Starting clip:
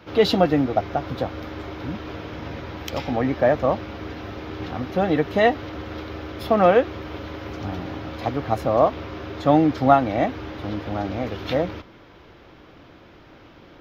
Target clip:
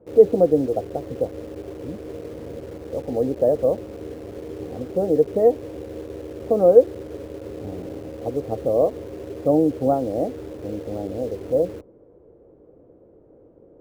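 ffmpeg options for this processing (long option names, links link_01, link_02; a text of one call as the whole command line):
ffmpeg -i in.wav -filter_complex "[0:a]lowpass=frequency=480:width_type=q:width=4.4,asplit=2[link_01][link_02];[link_02]acrusher=bits=4:mix=0:aa=0.000001,volume=-11dB[link_03];[link_01][link_03]amix=inputs=2:normalize=0,volume=-8dB" out.wav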